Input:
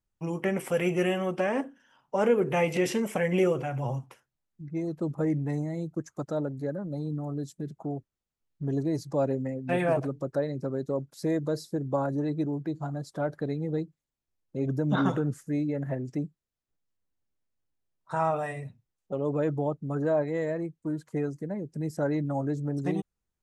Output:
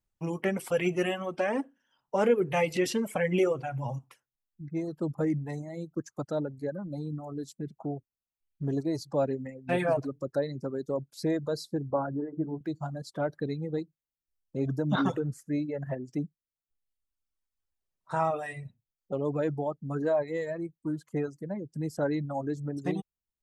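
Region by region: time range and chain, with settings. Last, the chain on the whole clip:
11.9–12.61 steep low-pass 1600 Hz 48 dB/oct + notches 50/100/150/200/250/300/350/400/450 Hz
whole clip: reverb removal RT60 1.4 s; dynamic EQ 4300 Hz, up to +6 dB, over -60 dBFS, Q 2.8

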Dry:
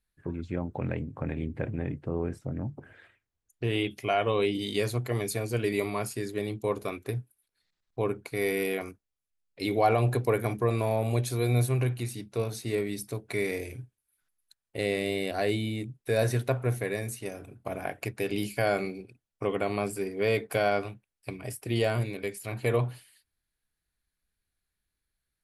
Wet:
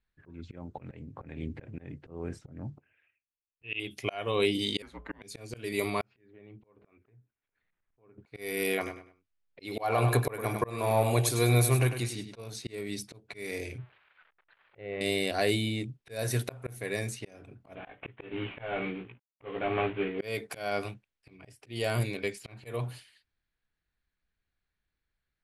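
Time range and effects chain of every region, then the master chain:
2.78–3.8 synth low-pass 2600 Hz, resonance Q 12 + upward expander 2.5:1, over -34 dBFS
4.82–5.22 three-band isolator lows -16 dB, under 500 Hz, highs -22 dB, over 2400 Hz + de-hum 202.4 Hz, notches 7 + frequency shift -180 Hz
6.01–8.18 LPF 2700 Hz 24 dB/oct + compressor 8:1, threshold -42 dBFS + auto swell 0.511 s
8.76–12.41 dynamic EQ 1100 Hz, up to +6 dB, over -41 dBFS, Q 0.91 + feedback echo 0.101 s, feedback 28%, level -9 dB
13.78–15.01 switching spikes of -30.5 dBFS + Gaussian blur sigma 4.1 samples + bell 250 Hz -11.5 dB 0.53 oct
17.75–20.19 CVSD 16 kbps + doubler 17 ms -3 dB
whole clip: low-pass opened by the level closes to 2400 Hz, open at -23 dBFS; high shelf 2800 Hz +8.5 dB; auto swell 0.338 s

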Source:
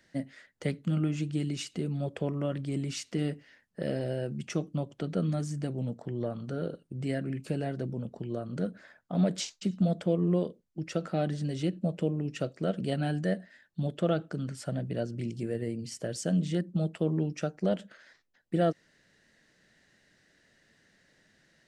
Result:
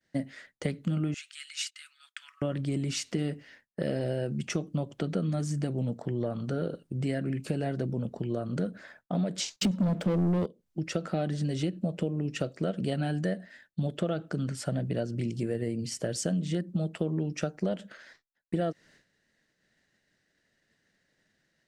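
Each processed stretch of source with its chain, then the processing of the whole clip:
1.14–2.42 gate -49 dBFS, range -22 dB + steep high-pass 1300 Hz 48 dB/oct
9.56–10.46 HPF 130 Hz 24 dB/oct + sample leveller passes 3 + low shelf 430 Hz +8 dB
whole clip: expander -56 dBFS; compressor, threshold -31 dBFS; gain +5 dB

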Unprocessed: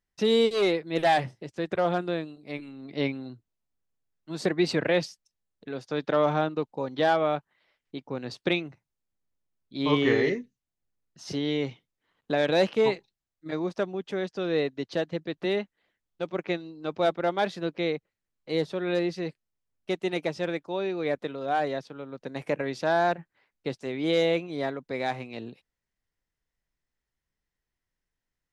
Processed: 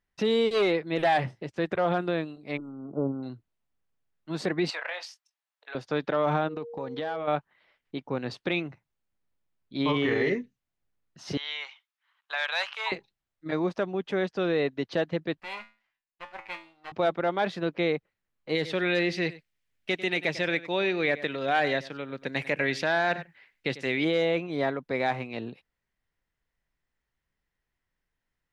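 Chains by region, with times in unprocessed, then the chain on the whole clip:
2.57–3.23 brick-wall FIR band-stop 1500–6600 Hz + air absorption 100 m
4.7–5.75 HPF 730 Hz 24 dB/oct + compressor 10:1, threshold -34 dBFS + doubler 22 ms -9 dB
6.47–7.27 compressor 8:1, threshold -33 dBFS + whine 470 Hz -41 dBFS
11.37–12.92 HPF 1000 Hz 24 dB/oct + bell 1900 Hz -2.5 dB 0.28 oct
15.4–16.92 minimum comb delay 0.4 ms + resonant low shelf 600 Hz -13 dB, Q 1.5 + resonator 110 Hz, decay 0.33 s, mix 80%
18.55–24.05 resonant high shelf 1500 Hz +7 dB, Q 1.5 + echo 96 ms -18.5 dB
whole clip: tone controls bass +5 dB, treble -10 dB; limiter -19 dBFS; low shelf 380 Hz -8 dB; gain +5.5 dB

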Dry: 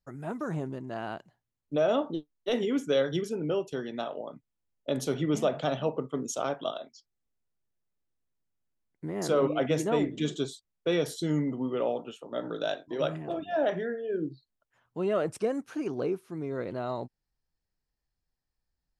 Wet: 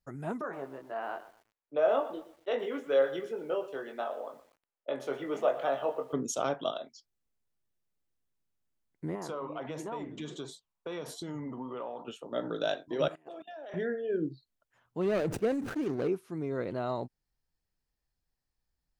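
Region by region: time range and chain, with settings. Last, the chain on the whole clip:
0.41–6.13 three-band isolator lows -22 dB, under 400 Hz, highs -19 dB, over 2500 Hz + doubler 22 ms -5.5 dB + lo-fi delay 0.12 s, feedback 35%, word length 9-bit, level -14.5 dB
9.15–12.08 bell 1000 Hz +14 dB + flange 1.4 Hz, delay 2.6 ms, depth 6.5 ms, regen -89% + compressor 4:1, threshold -36 dBFS
13.08–13.74 HPF 400 Hz + high shelf 5600 Hz +8 dB + level quantiser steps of 22 dB
15.01–16.08 median filter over 41 samples + sustainer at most 60 dB/s
whole clip: dry

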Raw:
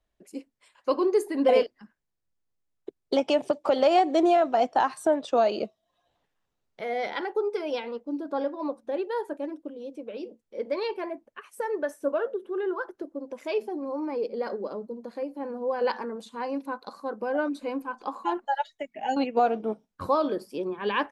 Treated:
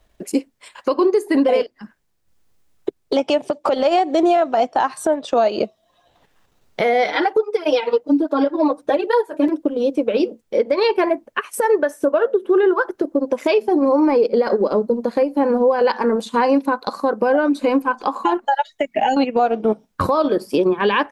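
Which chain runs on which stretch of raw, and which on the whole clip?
7.04–9.49 comb 6.5 ms, depth 88% + tape flanging out of phase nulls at 1.2 Hz, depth 6.9 ms
whole clip: transient shaper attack +2 dB, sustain -6 dB; compressor 5:1, threshold -32 dBFS; maximiser +27 dB; gain -7 dB

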